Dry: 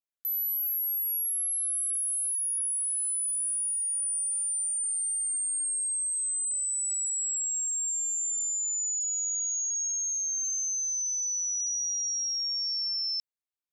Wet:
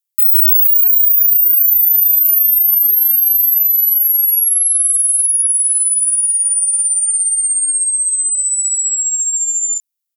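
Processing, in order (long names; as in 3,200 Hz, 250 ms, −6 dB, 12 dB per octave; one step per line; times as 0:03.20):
spectral tilt +5.5 dB per octave
double-tracking delay 30 ms −10 dB
wrong playback speed 33 rpm record played at 45 rpm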